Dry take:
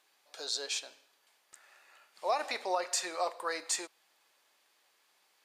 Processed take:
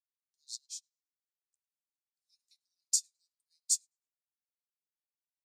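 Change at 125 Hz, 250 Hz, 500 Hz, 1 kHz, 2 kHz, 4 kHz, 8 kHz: n/a, under -40 dB, under -40 dB, under -40 dB, under -35 dB, -6.0 dB, +3.5 dB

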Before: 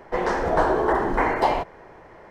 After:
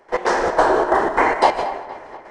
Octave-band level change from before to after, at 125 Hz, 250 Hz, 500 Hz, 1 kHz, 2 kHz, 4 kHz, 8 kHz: -6.0 dB, +1.5 dB, +4.5 dB, +5.5 dB, +5.5 dB, +7.5 dB, n/a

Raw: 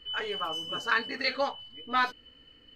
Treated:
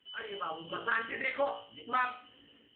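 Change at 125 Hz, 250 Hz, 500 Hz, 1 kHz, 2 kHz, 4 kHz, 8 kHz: -3.0 dB, -5.5 dB, -2.5 dB, -3.5 dB, -4.0 dB, -12.5 dB, under -30 dB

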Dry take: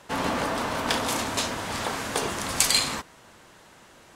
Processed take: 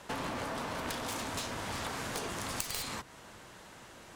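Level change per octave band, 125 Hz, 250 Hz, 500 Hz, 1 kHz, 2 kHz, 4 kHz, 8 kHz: -6.5, -9.5, -9.5, -9.5, -10.0, -13.0, -12.5 dB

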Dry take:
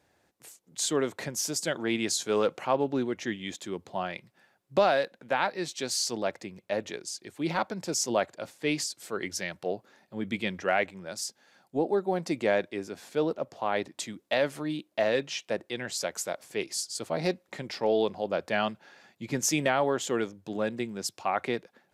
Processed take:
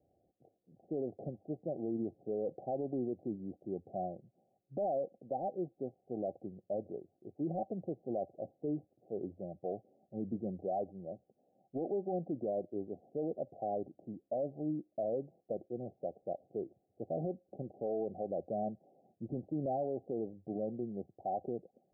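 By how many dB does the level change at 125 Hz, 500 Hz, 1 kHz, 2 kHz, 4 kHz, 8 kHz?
-5.5 dB, -8.0 dB, -10.0 dB, under -40 dB, under -40 dB, under -40 dB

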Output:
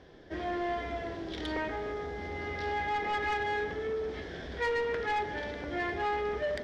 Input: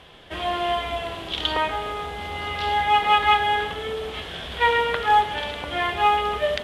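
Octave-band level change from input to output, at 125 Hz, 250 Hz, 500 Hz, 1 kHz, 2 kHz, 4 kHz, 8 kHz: -6.5 dB, -1.5 dB, -5.5 dB, -13.5 dB, -9.0 dB, -17.5 dB, n/a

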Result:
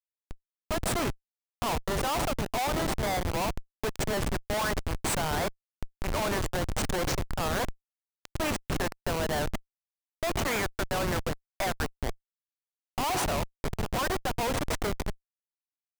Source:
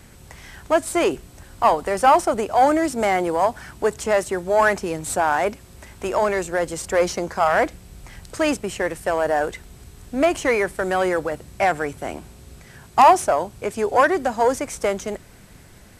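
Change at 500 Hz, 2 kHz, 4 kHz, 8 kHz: -12.5, -9.0, 0.0, -4.0 dB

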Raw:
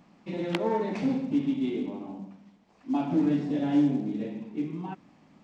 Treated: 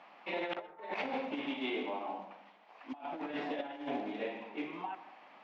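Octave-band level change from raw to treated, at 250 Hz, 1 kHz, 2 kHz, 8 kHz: -15.0 dB, -2.5 dB, +2.5 dB, n/a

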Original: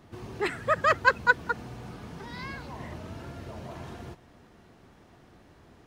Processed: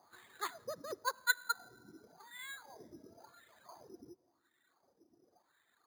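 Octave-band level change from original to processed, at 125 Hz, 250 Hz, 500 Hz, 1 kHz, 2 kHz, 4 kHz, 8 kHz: -28.0, -17.0, -16.5, -14.0, -12.5, -3.5, +4.5 dB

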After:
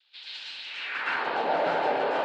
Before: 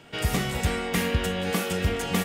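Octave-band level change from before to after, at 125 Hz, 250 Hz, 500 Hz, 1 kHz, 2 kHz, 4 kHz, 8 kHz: -25.5 dB, -12.5 dB, +0.5 dB, +5.5 dB, 0.0 dB, -4.0 dB, under -20 dB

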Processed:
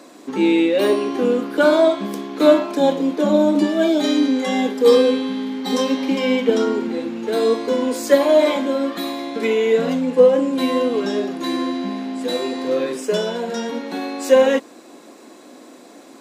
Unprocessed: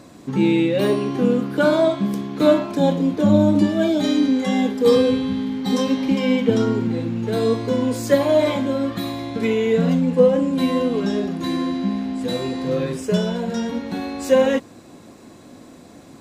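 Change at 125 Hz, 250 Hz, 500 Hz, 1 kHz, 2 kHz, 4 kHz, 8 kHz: -11.5, -1.0, +3.0, +3.0, +3.0, +3.0, +3.0 dB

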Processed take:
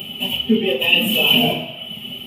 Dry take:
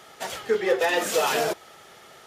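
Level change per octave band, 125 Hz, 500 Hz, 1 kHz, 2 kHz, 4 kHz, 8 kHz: +17.0, +0.5, -2.0, +8.0, +18.0, -4.5 dB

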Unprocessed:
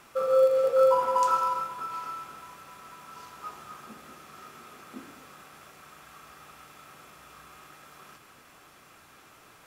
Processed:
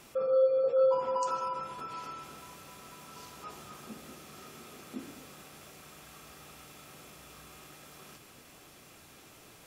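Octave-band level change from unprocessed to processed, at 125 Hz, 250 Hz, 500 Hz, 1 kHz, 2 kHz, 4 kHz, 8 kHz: +2.0, +2.0, -3.5, -8.5, -5.0, -1.5, -0.5 dB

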